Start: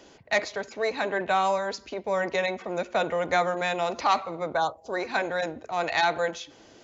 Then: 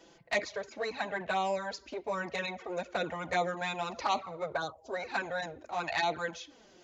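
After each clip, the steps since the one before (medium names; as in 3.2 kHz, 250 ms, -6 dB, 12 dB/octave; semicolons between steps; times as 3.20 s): touch-sensitive flanger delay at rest 6.4 ms, full sweep at -19 dBFS; trim -3 dB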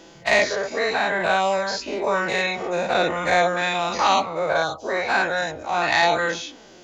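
every event in the spectrogram widened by 120 ms; trim +7 dB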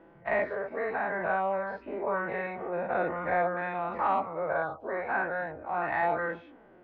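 low-pass 1.8 kHz 24 dB/octave; trim -8 dB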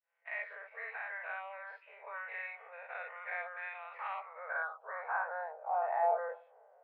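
fade-in on the opening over 0.52 s; band-pass sweep 2.4 kHz -> 690 Hz, 4.03–5.80 s; brick-wall FIR high-pass 420 Hz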